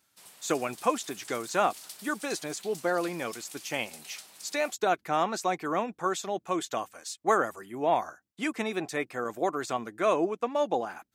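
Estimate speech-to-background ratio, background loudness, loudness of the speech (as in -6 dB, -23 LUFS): 15.5 dB, -46.0 LUFS, -30.5 LUFS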